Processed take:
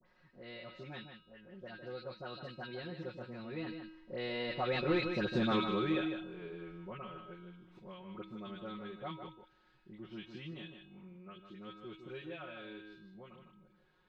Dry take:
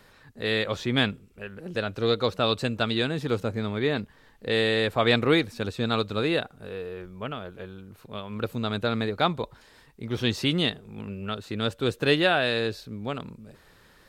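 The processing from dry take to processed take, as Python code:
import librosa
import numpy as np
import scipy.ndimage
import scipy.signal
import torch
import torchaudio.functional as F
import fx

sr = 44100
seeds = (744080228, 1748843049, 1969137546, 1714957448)

y = fx.doppler_pass(x, sr, speed_mps=27, closest_m=6.1, pass_at_s=5.36)
y = y + 0.98 * np.pad(y, (int(5.5 * sr / 1000.0), 0))[:len(y)]
y = fx.dispersion(y, sr, late='highs', ms=60.0, hz=1600.0)
y = 10.0 ** (-17.5 / 20.0) * np.tanh(y / 10.0 ** (-17.5 / 20.0))
y = fx.air_absorb(y, sr, metres=200.0)
y = fx.comb_fb(y, sr, f0_hz=320.0, decay_s=0.78, harmonics='all', damping=0.0, mix_pct=80)
y = y + 10.0 ** (-8.5 / 20.0) * np.pad(y, (int(154 * sr / 1000.0), 0))[:len(y)]
y = fx.band_squash(y, sr, depth_pct=40)
y = y * 10.0 ** (14.0 / 20.0)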